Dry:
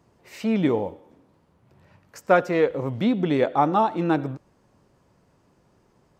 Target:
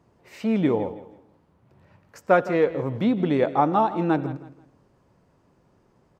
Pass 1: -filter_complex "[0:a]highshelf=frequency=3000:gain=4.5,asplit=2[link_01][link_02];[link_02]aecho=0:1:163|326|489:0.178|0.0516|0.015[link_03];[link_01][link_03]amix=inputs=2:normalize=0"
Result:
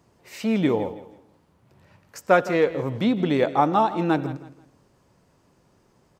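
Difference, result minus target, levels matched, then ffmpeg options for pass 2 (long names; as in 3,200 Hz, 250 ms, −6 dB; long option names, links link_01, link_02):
8,000 Hz band +8.5 dB
-filter_complex "[0:a]highshelf=frequency=3000:gain=-6,asplit=2[link_01][link_02];[link_02]aecho=0:1:163|326|489:0.178|0.0516|0.015[link_03];[link_01][link_03]amix=inputs=2:normalize=0"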